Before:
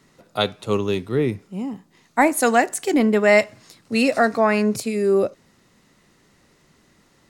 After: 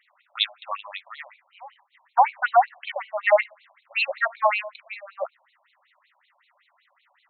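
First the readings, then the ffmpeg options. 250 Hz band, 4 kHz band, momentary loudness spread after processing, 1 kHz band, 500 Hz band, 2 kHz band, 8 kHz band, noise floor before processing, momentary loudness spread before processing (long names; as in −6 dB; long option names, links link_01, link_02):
below −40 dB, 0.0 dB, 18 LU, +1.0 dB, −8.0 dB, −3.0 dB, below −40 dB, −59 dBFS, 14 LU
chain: -af "afftfilt=real='re*between(b*sr/1024,760*pow(3100/760,0.5+0.5*sin(2*PI*5.3*pts/sr))/1.41,760*pow(3100/760,0.5+0.5*sin(2*PI*5.3*pts/sr))*1.41)':imag='im*between(b*sr/1024,760*pow(3100/760,0.5+0.5*sin(2*PI*5.3*pts/sr))/1.41,760*pow(3100/760,0.5+0.5*sin(2*PI*5.3*pts/sr))*1.41)':win_size=1024:overlap=0.75,volume=3dB"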